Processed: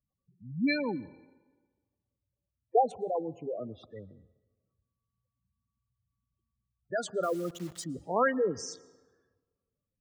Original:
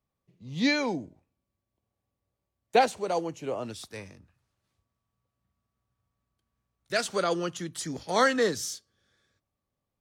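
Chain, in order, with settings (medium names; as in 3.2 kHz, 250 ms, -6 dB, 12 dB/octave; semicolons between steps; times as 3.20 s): local Wiener filter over 9 samples; spectral gate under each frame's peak -10 dB strong; 7.23–7.84 s: word length cut 8-bit, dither none; on a send: reverberation RT60 1.4 s, pre-delay 109 ms, DRR 22 dB; on the sum: trim -2 dB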